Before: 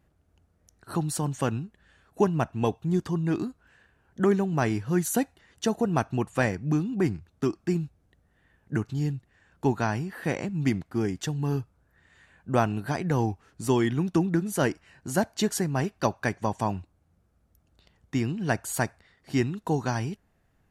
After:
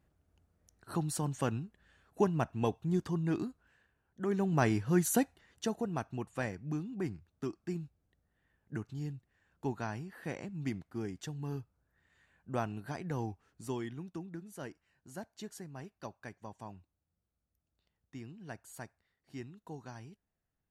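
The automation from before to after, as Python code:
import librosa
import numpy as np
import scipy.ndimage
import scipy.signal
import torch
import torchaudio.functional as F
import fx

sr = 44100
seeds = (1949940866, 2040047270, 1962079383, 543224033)

y = fx.gain(x, sr, db=fx.line((3.42, -6.0), (4.2, -15.0), (4.47, -3.0), (5.15, -3.0), (5.99, -11.5), (13.47, -11.5), (14.2, -19.5)))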